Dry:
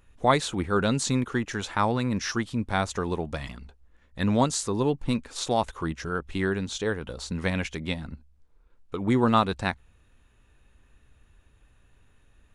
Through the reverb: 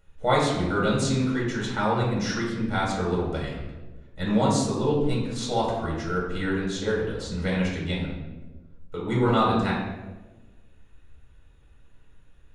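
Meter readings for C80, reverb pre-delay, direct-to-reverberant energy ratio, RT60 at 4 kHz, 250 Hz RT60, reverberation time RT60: 5.0 dB, 4 ms, -5.0 dB, 0.75 s, 1.5 s, 1.2 s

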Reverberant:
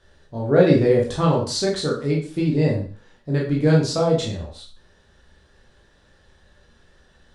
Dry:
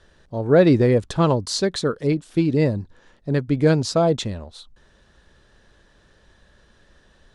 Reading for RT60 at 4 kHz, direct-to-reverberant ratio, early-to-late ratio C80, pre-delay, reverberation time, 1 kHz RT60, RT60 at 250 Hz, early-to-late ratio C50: 0.40 s, -3.0 dB, 10.5 dB, 6 ms, 0.40 s, 0.45 s, 0.40 s, 7.0 dB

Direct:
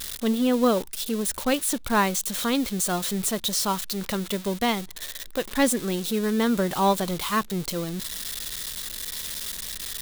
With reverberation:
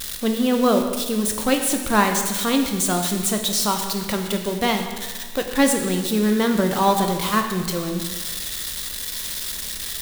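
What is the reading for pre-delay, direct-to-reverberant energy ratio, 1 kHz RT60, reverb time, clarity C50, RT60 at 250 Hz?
5 ms, 4.0 dB, 1.5 s, 1.5 s, 6.0 dB, 1.5 s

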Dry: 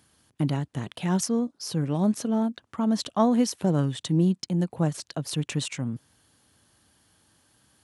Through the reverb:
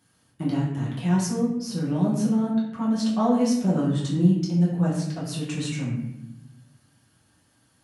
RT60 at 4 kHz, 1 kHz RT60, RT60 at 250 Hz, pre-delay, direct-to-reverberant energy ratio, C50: 0.60 s, 0.75 s, 1.5 s, 5 ms, -7.5 dB, 3.0 dB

